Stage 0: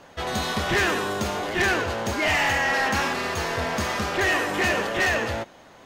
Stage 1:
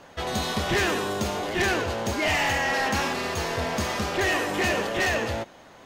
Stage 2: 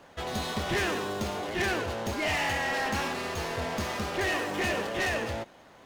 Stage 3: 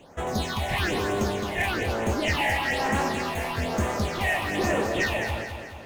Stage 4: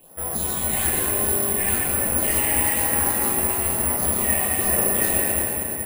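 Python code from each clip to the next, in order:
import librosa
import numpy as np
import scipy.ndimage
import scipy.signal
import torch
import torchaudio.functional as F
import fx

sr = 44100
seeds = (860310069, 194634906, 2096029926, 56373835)

y1 = fx.dynamic_eq(x, sr, hz=1500.0, q=1.1, threshold_db=-35.0, ratio=4.0, max_db=-4)
y2 = fx.running_max(y1, sr, window=3)
y2 = y2 * 10.0 ** (-4.5 / 20.0)
y3 = fx.phaser_stages(y2, sr, stages=6, low_hz=320.0, high_hz=4600.0, hz=1.1, feedback_pct=25)
y3 = fx.echo_feedback(y3, sr, ms=213, feedback_pct=51, wet_db=-7.5)
y3 = y3 * 10.0 ** (5.0 / 20.0)
y4 = fx.room_shoebox(y3, sr, seeds[0], volume_m3=200.0, walls='hard', distance_m=0.76)
y4 = (np.kron(scipy.signal.resample_poly(y4, 1, 4), np.eye(4)[0]) * 4)[:len(y4)]
y4 = y4 * 10.0 ** (-7.5 / 20.0)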